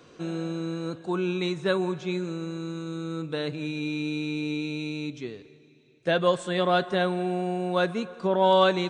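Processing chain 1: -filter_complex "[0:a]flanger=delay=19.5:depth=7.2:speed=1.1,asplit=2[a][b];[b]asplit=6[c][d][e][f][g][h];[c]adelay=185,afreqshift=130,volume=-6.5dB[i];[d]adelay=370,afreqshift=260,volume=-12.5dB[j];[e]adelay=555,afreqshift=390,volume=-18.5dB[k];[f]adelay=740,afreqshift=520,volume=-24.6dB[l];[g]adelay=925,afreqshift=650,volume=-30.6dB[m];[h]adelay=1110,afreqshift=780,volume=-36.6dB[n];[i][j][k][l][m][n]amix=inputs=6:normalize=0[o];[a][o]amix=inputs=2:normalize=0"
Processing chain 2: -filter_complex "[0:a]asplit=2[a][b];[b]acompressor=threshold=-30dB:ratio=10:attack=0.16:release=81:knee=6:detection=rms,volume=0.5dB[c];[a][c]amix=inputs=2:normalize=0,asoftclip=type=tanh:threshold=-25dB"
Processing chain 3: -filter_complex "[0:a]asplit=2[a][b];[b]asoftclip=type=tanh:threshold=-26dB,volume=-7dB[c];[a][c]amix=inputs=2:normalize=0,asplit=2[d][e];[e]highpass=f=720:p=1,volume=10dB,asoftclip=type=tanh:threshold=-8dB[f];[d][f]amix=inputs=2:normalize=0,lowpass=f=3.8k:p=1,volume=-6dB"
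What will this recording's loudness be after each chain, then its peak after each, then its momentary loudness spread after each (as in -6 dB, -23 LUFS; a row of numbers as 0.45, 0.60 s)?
-29.5, -30.5, -25.0 LUFS; -7.5, -25.0, -8.5 dBFS; 11, 4, 11 LU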